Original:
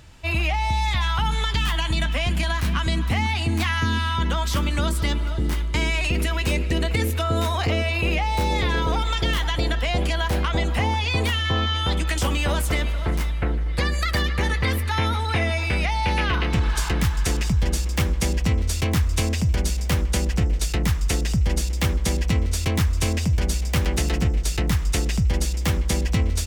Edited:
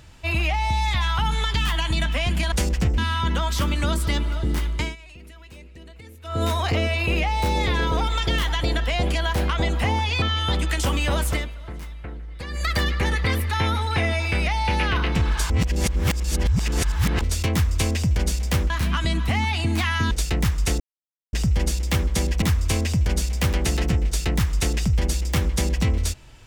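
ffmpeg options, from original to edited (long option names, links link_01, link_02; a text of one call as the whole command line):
ffmpeg -i in.wav -filter_complex "[0:a]asplit=14[link_01][link_02][link_03][link_04][link_05][link_06][link_07][link_08][link_09][link_10][link_11][link_12][link_13][link_14];[link_01]atrim=end=2.522[link_15];[link_02]atrim=start=20.078:end=20.542[link_16];[link_03]atrim=start=3.928:end=5.91,asetpts=PTS-STARTPTS,afade=type=out:start_time=1.782:duration=0.2:silence=0.0841395[link_17];[link_04]atrim=start=5.91:end=7.18,asetpts=PTS-STARTPTS,volume=-21.5dB[link_18];[link_05]atrim=start=7.18:end=11.172,asetpts=PTS-STARTPTS,afade=type=in:duration=0.2:silence=0.0841395[link_19];[link_06]atrim=start=11.598:end=12.88,asetpts=PTS-STARTPTS,afade=type=out:start_time=1.092:duration=0.19:silence=0.266073[link_20];[link_07]atrim=start=12.88:end=13.86,asetpts=PTS-STARTPTS,volume=-11.5dB[link_21];[link_08]atrim=start=13.86:end=16.882,asetpts=PTS-STARTPTS,afade=type=in:duration=0.19:silence=0.266073[link_22];[link_09]atrim=start=16.878:end=18.592,asetpts=PTS-STARTPTS,areverse[link_23];[link_10]atrim=start=18.588:end=20.082[link_24];[link_11]atrim=start=2.518:end=3.932[link_25];[link_12]atrim=start=20.538:end=21.23,asetpts=PTS-STARTPTS,afade=type=out:start_time=0.688:duration=0.004:curve=hsin,apad=pad_dur=0.53[link_26];[link_13]atrim=start=21.23:end=22.322,asetpts=PTS-STARTPTS,afade=type=in:duration=0.004:curve=hsin[link_27];[link_14]atrim=start=22.738[link_28];[link_15][link_16]acrossfade=duration=0.004:curve1=hsin:curve2=hsin[link_29];[link_17][link_18][link_19]concat=n=3:v=0:a=1[link_30];[link_29][link_30]acrossfade=duration=0.004:curve1=hsin:curve2=hsin[link_31];[link_20][link_21][link_22]concat=n=3:v=0:a=1[link_32];[link_31][link_32]acrossfade=duration=0.004:curve1=hsin:curve2=hsin[link_33];[link_33][link_23]acrossfade=duration=0.004:curve1=hsin:curve2=hsin[link_34];[link_34][link_24]acrossfade=duration=0.004:curve1=hsin:curve2=hsin[link_35];[link_35][link_25]acrossfade=duration=0.004:curve1=hsin:curve2=hsin[link_36];[link_26][link_27]concat=n=2:v=0:a=1[link_37];[link_36][link_37]acrossfade=duration=0.004:curve1=hsin:curve2=hsin[link_38];[link_38][link_28]acrossfade=duration=0.004:curve1=hsin:curve2=hsin" out.wav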